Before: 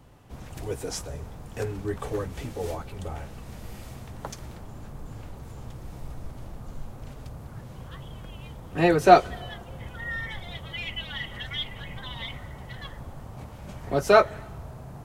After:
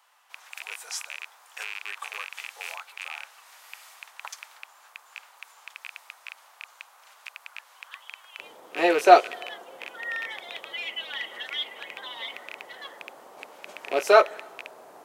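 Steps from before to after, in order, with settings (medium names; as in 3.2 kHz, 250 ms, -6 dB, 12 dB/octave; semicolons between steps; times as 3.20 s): rattle on loud lows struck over -34 dBFS, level -22 dBFS; high-pass 940 Hz 24 dB/octave, from 8.39 s 370 Hz; trim +1 dB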